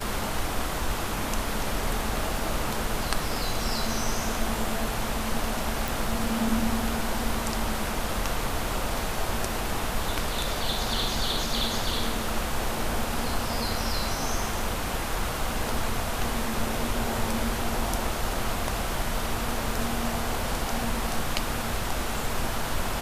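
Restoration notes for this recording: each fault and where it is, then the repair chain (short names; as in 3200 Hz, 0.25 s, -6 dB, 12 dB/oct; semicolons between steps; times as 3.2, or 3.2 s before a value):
5.88 pop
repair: de-click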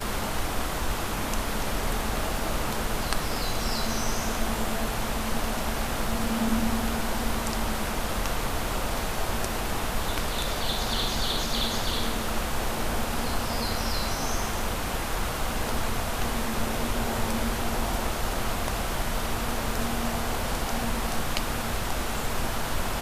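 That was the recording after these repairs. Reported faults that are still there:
none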